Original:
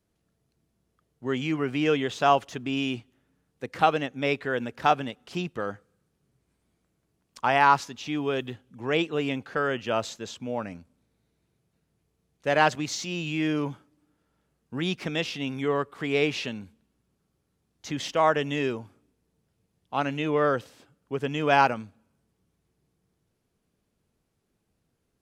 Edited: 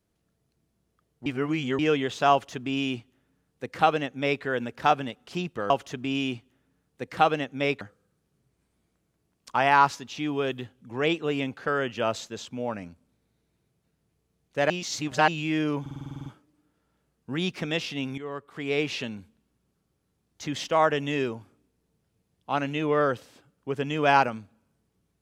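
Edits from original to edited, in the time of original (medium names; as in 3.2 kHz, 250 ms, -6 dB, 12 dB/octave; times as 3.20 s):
1.26–1.79 s: reverse
2.32–4.43 s: copy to 5.70 s
12.59–13.17 s: reverse
13.70 s: stutter 0.05 s, 10 plays
15.62–16.46 s: fade in, from -13.5 dB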